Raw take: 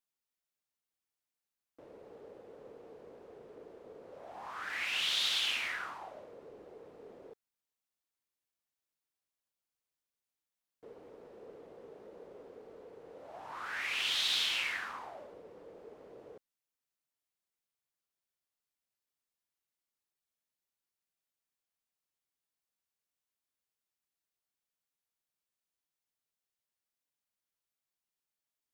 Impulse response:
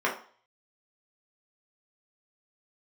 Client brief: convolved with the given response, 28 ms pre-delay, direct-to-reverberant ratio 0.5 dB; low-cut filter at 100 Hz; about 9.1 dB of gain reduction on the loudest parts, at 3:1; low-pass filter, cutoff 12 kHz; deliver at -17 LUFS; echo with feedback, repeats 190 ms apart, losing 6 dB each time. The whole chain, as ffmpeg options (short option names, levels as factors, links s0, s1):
-filter_complex "[0:a]highpass=100,lowpass=12000,acompressor=threshold=0.00891:ratio=3,aecho=1:1:190|380|570|760|950|1140:0.501|0.251|0.125|0.0626|0.0313|0.0157,asplit=2[s0][s1];[1:a]atrim=start_sample=2205,adelay=28[s2];[s1][s2]afir=irnorm=-1:irlink=0,volume=0.211[s3];[s0][s3]amix=inputs=2:normalize=0,volume=17.8"